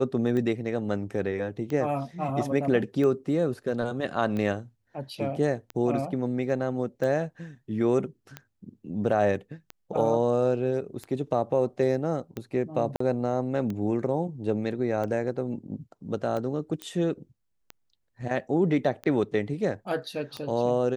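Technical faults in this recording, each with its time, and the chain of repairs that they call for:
tick 45 rpm -21 dBFS
12.96–13.00 s: dropout 44 ms
16.82 s: pop -19 dBFS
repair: de-click; interpolate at 12.96 s, 44 ms

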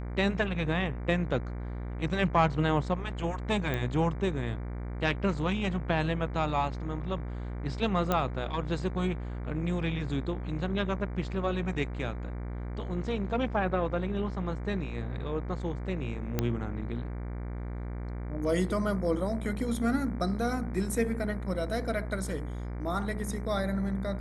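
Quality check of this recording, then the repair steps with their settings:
buzz 60 Hz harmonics 39 -36 dBFS
3.74 s: pop -18 dBFS
8.12 s: pop -13 dBFS
16.39 s: pop -13 dBFS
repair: de-click; de-hum 60 Hz, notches 39

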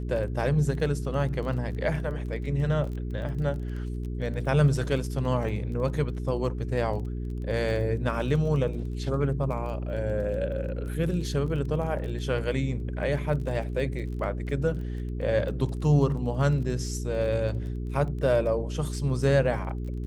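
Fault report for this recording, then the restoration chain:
crackle 23 per s -36 dBFS
hum 60 Hz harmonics 7 -32 dBFS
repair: de-click; de-hum 60 Hz, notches 7

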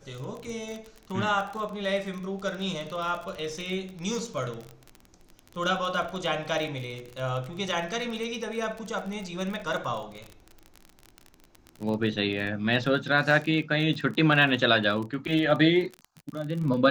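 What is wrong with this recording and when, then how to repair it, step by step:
crackle 32 per s -32 dBFS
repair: de-click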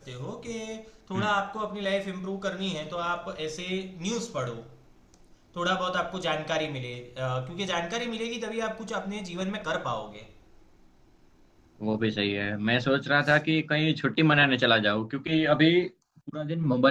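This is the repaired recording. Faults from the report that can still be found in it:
nothing left

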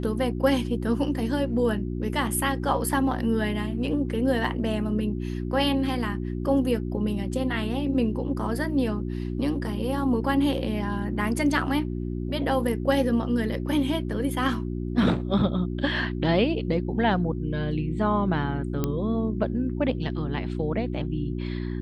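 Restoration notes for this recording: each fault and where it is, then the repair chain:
hum 60 Hz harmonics 6 -30 dBFS
18.84 s: pop -12 dBFS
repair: de-click; de-hum 60 Hz, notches 6

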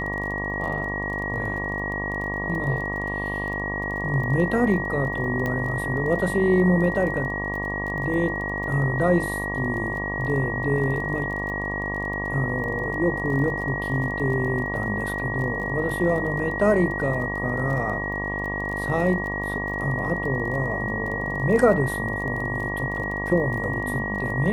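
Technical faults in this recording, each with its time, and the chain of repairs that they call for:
buzz 50 Hz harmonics 23 -31 dBFS
crackle 23 per s -32 dBFS
whine 1.9 kHz -28 dBFS
5.46 s: pop -15 dBFS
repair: de-click; de-hum 50 Hz, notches 23; band-stop 1.9 kHz, Q 30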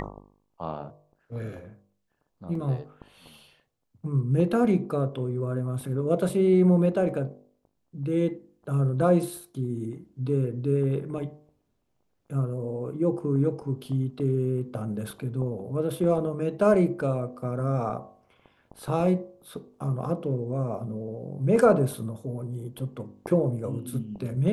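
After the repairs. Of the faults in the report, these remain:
nothing left

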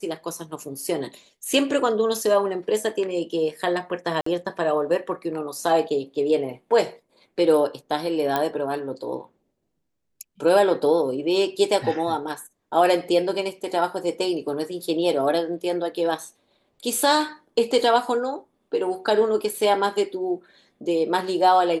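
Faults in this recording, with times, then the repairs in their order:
4.21–4.26 s: dropout 54 ms
8.36 s: pop -9 dBFS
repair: de-click; interpolate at 4.21 s, 54 ms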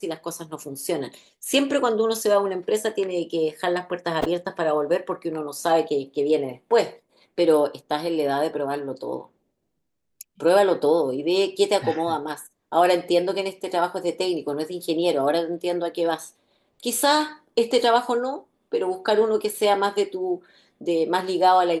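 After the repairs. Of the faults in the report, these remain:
nothing left

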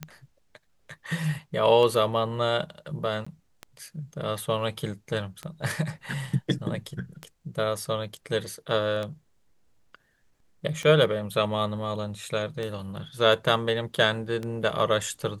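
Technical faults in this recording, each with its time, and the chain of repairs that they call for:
tick 33 1/3 rpm -19 dBFS
3.25–3.27 s: dropout 15 ms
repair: de-click; interpolate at 3.25 s, 15 ms

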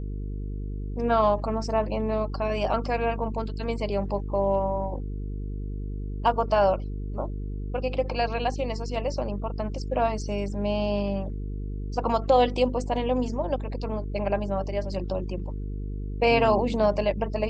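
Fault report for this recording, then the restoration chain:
buzz 50 Hz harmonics 9 -32 dBFS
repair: de-hum 50 Hz, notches 9

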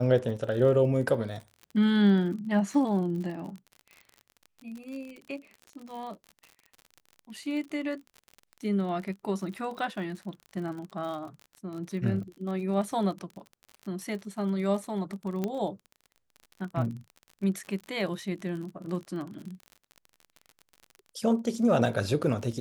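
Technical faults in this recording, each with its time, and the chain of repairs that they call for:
crackle 43 per s -37 dBFS
15.44 s: pop -17 dBFS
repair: de-click

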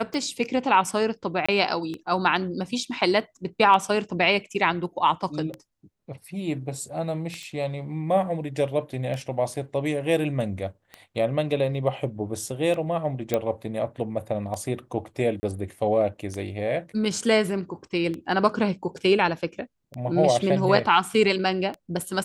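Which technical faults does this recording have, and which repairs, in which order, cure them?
tick 33 1/3 rpm -20 dBFS
1.46–1.49 s: dropout 25 ms
7.43 s: pop -27 dBFS
13.34 s: pop -10 dBFS
15.40–15.43 s: dropout 30 ms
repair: de-click; interpolate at 1.46 s, 25 ms; interpolate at 15.40 s, 30 ms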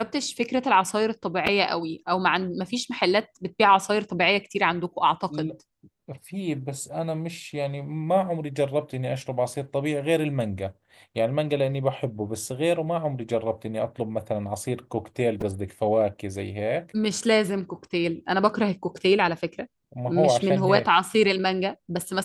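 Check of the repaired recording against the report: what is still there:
nothing left

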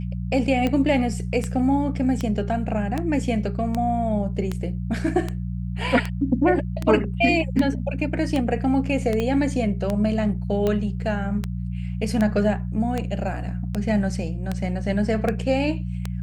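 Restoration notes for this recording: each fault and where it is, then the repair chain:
hum 60 Hz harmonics 3 -28 dBFS
tick 78 rpm -12 dBFS
9.20 s: pop -13 dBFS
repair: de-click; de-hum 60 Hz, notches 3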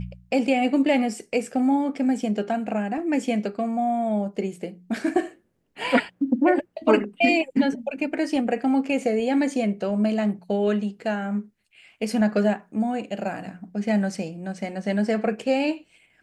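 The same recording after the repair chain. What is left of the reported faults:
9.20 s: pop

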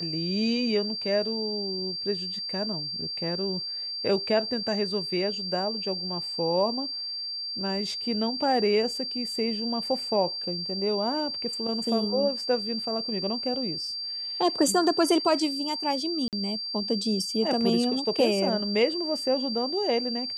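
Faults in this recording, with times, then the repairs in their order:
whine 4.7 kHz -31 dBFS
16.28–16.33 s: dropout 48 ms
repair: band-stop 4.7 kHz, Q 30; interpolate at 16.28 s, 48 ms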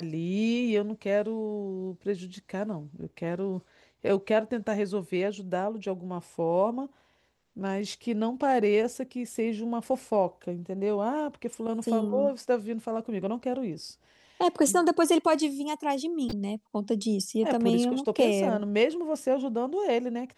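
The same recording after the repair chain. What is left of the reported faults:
nothing left

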